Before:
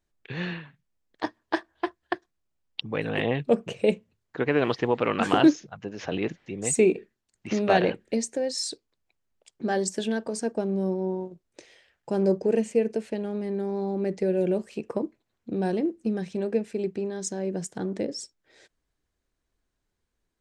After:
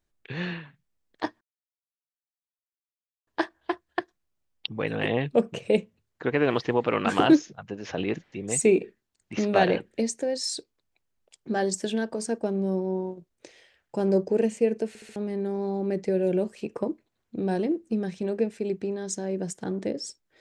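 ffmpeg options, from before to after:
ffmpeg -i in.wav -filter_complex "[0:a]asplit=6[link_01][link_02][link_03][link_04][link_05][link_06];[link_01]atrim=end=1.41,asetpts=PTS-STARTPTS,afade=type=out:start_time=1.406:duration=0.004:curve=hsin,apad=pad_dur=1.86[link_07];[link_02]atrim=start=1.41:end=13.092,asetpts=PTS-STARTPTS,afade=type=in:duration=0.004:curve=hsin[link_08];[link_03]atrim=start=13.018:end=13.092[link_09];[link_04]atrim=start=13.018:end=13.092[link_10];[link_05]atrim=start=13.018:end=13.092[link_11];[link_06]atrim=start=13.298[link_12];[link_07][link_08]concat=n=2:v=0:a=1[link_13];[link_13][link_09]acrossfade=duration=0.004:curve1=hsin:curve2=hsin[link_14];[link_14][link_10]acrossfade=duration=0.004:curve1=hsin:curve2=hsin[link_15];[link_15][link_11]acrossfade=duration=0.004:curve1=hsin:curve2=hsin[link_16];[link_16][link_12]acrossfade=duration=0.004:curve1=hsin:curve2=hsin" out.wav

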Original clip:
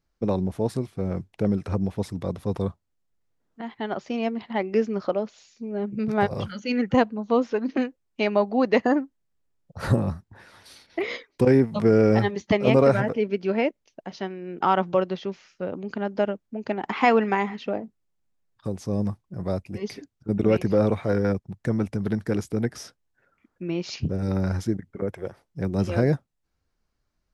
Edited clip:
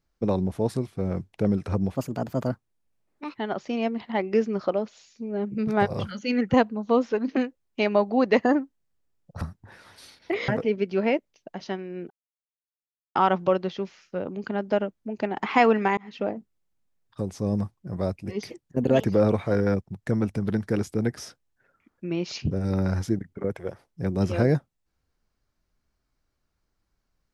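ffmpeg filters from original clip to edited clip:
ffmpeg -i in.wav -filter_complex "[0:a]asplit=9[link_01][link_02][link_03][link_04][link_05][link_06][link_07][link_08][link_09];[link_01]atrim=end=1.954[link_10];[link_02]atrim=start=1.95:end=3.76,asetpts=PTS-STARTPTS,asetrate=56889,aresample=44100[link_11];[link_03]atrim=start=3.756:end=9.822[link_12];[link_04]atrim=start=10.088:end=11.162[link_13];[link_05]atrim=start=12.998:end=14.62,asetpts=PTS-STARTPTS,afade=type=out:start_time=1.618:duration=0.004:curve=hsin,apad=pad_dur=1.05[link_14];[link_06]atrim=start=14.62:end=17.44,asetpts=PTS-STARTPTS,afade=type=in:duration=0.004:curve=hsin,afade=type=out:start_time=2.816:duration=0.004:curve=hsin[link_15];[link_07]atrim=start=17.44:end=19.974,asetpts=PTS-STARTPTS,afade=type=in:duration=0.25[link_16];[link_08]atrim=start=19.97:end=20.62,asetpts=PTS-STARTPTS,asetrate=53361,aresample=44100,atrim=end_sample=23690,asetpts=PTS-STARTPTS[link_17];[link_09]atrim=start=20.616[link_18];[link_10][link_11]acrossfade=duration=0.004:curve1=hsin:curve2=hsin[link_19];[link_19][link_12]acrossfade=duration=0.004:curve1=hsin:curve2=hsin[link_20];[link_20][link_13]acrossfade=duration=0.004:curve1=hsin:curve2=hsin[link_21];[link_14][link_15][link_16]concat=n=3:v=0:a=1[link_22];[link_21][link_22]acrossfade=duration=0.004:curve1=hsin:curve2=hsin[link_23];[link_23][link_17]acrossfade=duration=0.004:curve1=hsin:curve2=hsin[link_24];[link_24][link_18]acrossfade=duration=0.004:curve1=hsin:curve2=hsin" out.wav

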